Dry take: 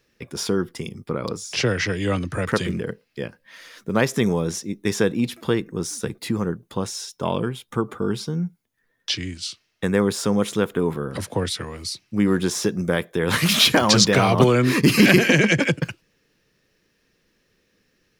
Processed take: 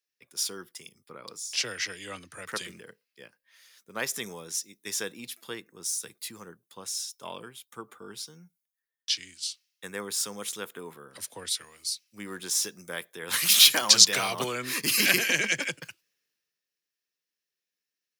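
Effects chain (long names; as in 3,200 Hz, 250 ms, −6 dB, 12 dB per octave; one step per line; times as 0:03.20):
spectral tilt +4.5 dB per octave
multiband upward and downward expander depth 40%
level −12.5 dB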